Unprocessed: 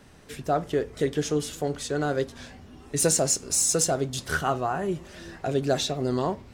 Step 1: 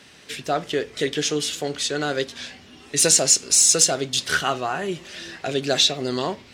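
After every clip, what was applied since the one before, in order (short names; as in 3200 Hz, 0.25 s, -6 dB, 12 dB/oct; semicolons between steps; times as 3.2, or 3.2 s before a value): weighting filter D; gain +1.5 dB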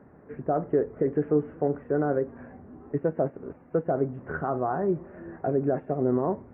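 limiter -14 dBFS, peak gain reduction 11 dB; Gaussian blur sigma 8.1 samples; gain +3 dB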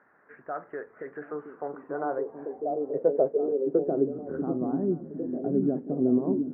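delay with a stepping band-pass 0.722 s, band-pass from 220 Hz, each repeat 0.7 oct, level -1.5 dB; band-pass sweep 1600 Hz -> 250 Hz, 1.08–4.56; gain +5 dB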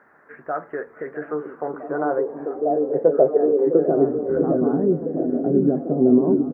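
doubler 13 ms -11 dB; delay with a stepping band-pass 0.656 s, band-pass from 350 Hz, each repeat 0.7 oct, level -7 dB; gain +7.5 dB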